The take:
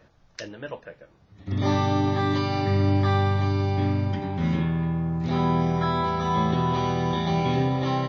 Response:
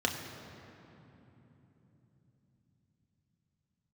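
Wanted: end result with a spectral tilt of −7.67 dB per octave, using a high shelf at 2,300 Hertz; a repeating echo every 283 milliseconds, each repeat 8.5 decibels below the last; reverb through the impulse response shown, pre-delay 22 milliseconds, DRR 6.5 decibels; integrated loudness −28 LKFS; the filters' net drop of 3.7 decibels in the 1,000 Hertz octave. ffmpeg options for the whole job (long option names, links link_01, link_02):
-filter_complex "[0:a]equalizer=frequency=1000:width_type=o:gain=-3.5,highshelf=frequency=2300:gain=-6,aecho=1:1:283|566|849|1132:0.376|0.143|0.0543|0.0206,asplit=2[link_01][link_02];[1:a]atrim=start_sample=2205,adelay=22[link_03];[link_02][link_03]afir=irnorm=-1:irlink=0,volume=-14.5dB[link_04];[link_01][link_04]amix=inputs=2:normalize=0,volume=-5dB"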